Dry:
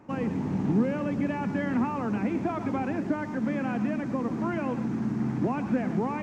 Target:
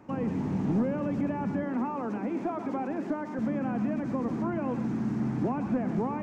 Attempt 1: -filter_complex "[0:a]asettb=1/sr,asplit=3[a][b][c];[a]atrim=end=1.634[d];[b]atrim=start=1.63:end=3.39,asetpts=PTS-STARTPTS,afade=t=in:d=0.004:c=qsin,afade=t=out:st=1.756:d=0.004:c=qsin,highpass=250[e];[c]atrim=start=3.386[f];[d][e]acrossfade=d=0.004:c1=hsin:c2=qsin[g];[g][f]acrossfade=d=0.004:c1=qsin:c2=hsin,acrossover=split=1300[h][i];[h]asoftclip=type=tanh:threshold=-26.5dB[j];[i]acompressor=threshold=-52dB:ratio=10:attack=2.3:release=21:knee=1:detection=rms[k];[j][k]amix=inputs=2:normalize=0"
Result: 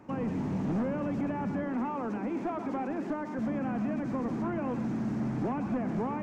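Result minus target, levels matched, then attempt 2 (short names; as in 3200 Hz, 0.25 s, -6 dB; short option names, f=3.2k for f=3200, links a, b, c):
soft clip: distortion +7 dB
-filter_complex "[0:a]asettb=1/sr,asplit=3[a][b][c];[a]atrim=end=1.634[d];[b]atrim=start=1.63:end=3.39,asetpts=PTS-STARTPTS,afade=t=in:d=0.004:c=qsin,afade=t=out:st=1.756:d=0.004:c=qsin,highpass=250[e];[c]atrim=start=3.386[f];[d][e]acrossfade=d=0.004:c1=hsin:c2=qsin[g];[g][f]acrossfade=d=0.004:c1=qsin:c2=hsin,acrossover=split=1300[h][i];[h]asoftclip=type=tanh:threshold=-20dB[j];[i]acompressor=threshold=-52dB:ratio=10:attack=2.3:release=21:knee=1:detection=rms[k];[j][k]amix=inputs=2:normalize=0"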